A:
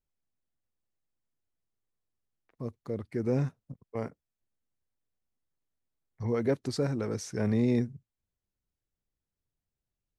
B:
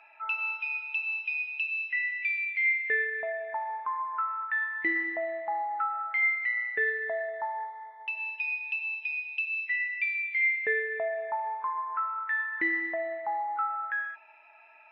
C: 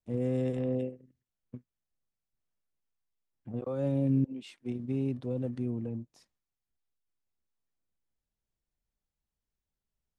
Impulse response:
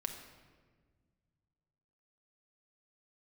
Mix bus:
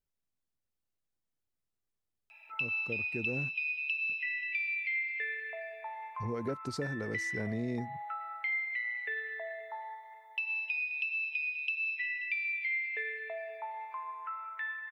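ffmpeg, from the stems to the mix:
-filter_complex "[0:a]volume=0.75,asplit=3[s0][s1][s2];[s0]atrim=end=3.58,asetpts=PTS-STARTPTS,afade=t=out:st=3.576:d=0.004:c=hsin[s3];[s1]atrim=start=3.58:end=4.09,asetpts=PTS-STARTPTS,volume=0[s4];[s2]atrim=start=4.09,asetpts=PTS-STARTPTS,afade=t=in:d=0.004:c=hsin[s5];[s3][s4][s5]concat=n=3:v=0:a=1[s6];[1:a]highpass=480,aexciter=amount=6.8:drive=0.9:freq=2300,adelay=2300,volume=0.376,asplit=2[s7][s8];[s8]volume=0.0841,aecho=0:1:532|1064|1596|2128|2660:1|0.39|0.152|0.0593|0.0231[s9];[s6][s7][s9]amix=inputs=3:normalize=0,acompressor=threshold=0.0224:ratio=3"

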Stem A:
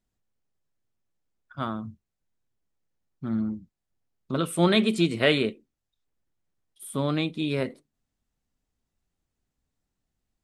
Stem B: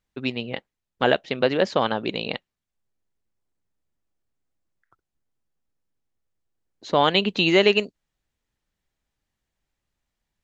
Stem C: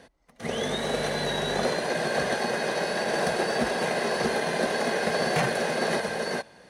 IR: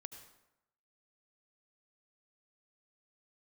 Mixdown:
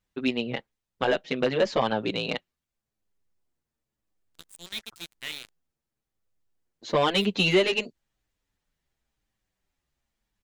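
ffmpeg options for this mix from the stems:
-filter_complex "[0:a]equalizer=f=125:t=o:w=1:g=-10,equalizer=f=500:t=o:w=1:g=-11,equalizer=f=1000:t=o:w=1:g=-9,equalizer=f=2000:t=o:w=1:g=7,equalizer=f=4000:t=o:w=1:g=9,equalizer=f=8000:t=o:w=1:g=12,acrusher=bits=2:mix=0:aa=0.5,volume=0.112[s0];[1:a]asoftclip=type=tanh:threshold=0.282,asplit=2[s1][s2];[s2]adelay=7.5,afreqshift=-0.95[s3];[s1][s3]amix=inputs=2:normalize=1,volume=1.41[s4];[s0][s4]amix=inputs=2:normalize=0,alimiter=limit=0.251:level=0:latency=1:release=388"

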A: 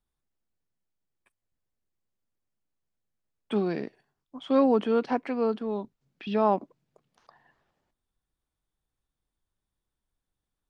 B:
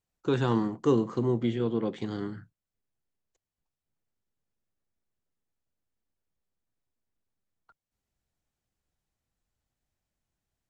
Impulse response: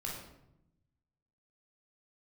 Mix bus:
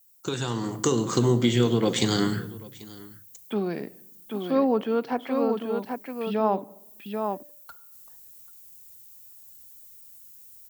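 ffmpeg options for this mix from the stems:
-filter_complex "[0:a]agate=range=0.0224:threshold=0.00224:ratio=3:detection=peak,volume=0.282,asplit=4[s0][s1][s2][s3];[s1]volume=0.1[s4];[s2]volume=0.596[s5];[1:a]aemphasis=mode=production:type=50fm,crystalizer=i=3.5:c=0,acompressor=threshold=0.0355:ratio=10,volume=1.12,asplit=3[s6][s7][s8];[s7]volume=0.282[s9];[s8]volume=0.0944[s10];[s3]apad=whole_len=471814[s11];[s6][s11]sidechaincompress=threshold=0.00708:ratio=8:attack=16:release=309[s12];[2:a]atrim=start_sample=2205[s13];[s4][s9]amix=inputs=2:normalize=0[s14];[s14][s13]afir=irnorm=-1:irlink=0[s15];[s5][s10]amix=inputs=2:normalize=0,aecho=0:1:788:1[s16];[s0][s12][s15][s16]amix=inputs=4:normalize=0,highpass=45,bandreject=f=292.2:t=h:w=4,bandreject=f=584.4:t=h:w=4,dynaudnorm=f=530:g=3:m=3.16"

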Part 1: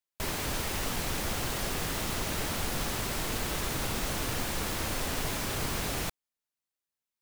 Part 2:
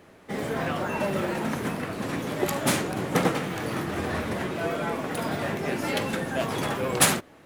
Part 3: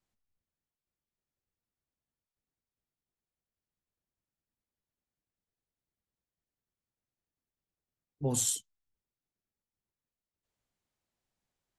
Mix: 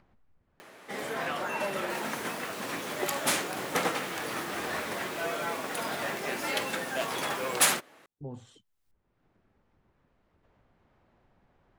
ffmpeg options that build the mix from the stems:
-filter_complex "[0:a]highpass=220,adelay=1700,volume=0.316[s0];[1:a]highpass=f=790:p=1,adelay=600,volume=1[s1];[2:a]lowpass=1500,acompressor=threshold=0.00631:ratio=1.5,volume=0.708[s2];[s0][s1][s2]amix=inputs=3:normalize=0,acompressor=mode=upward:threshold=0.00631:ratio=2.5,asoftclip=type=tanh:threshold=0.224"

